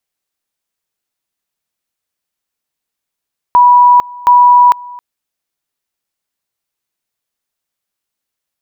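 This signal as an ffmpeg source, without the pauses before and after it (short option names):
-f lavfi -i "aevalsrc='pow(10,(-2.5-23.5*gte(mod(t,0.72),0.45))/20)*sin(2*PI*978*t)':d=1.44:s=44100"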